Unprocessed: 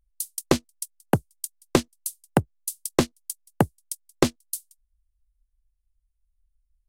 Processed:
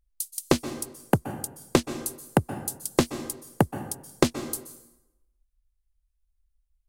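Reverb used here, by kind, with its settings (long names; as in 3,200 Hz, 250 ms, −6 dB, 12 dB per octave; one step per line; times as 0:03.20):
dense smooth reverb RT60 0.92 s, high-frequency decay 0.75×, pre-delay 115 ms, DRR 10.5 dB
level −1 dB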